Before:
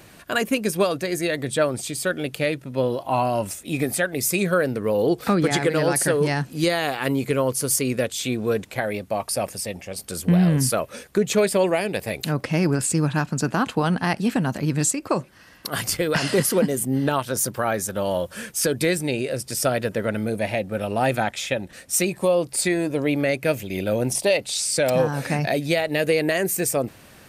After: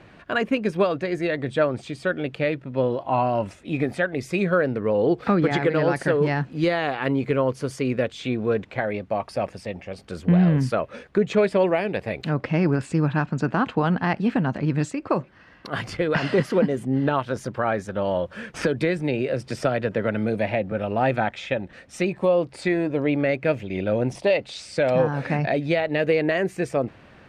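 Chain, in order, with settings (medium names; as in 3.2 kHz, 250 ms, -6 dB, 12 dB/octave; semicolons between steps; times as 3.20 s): low-pass 2.6 kHz 12 dB/octave; 18.54–20.72 s: three bands compressed up and down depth 70%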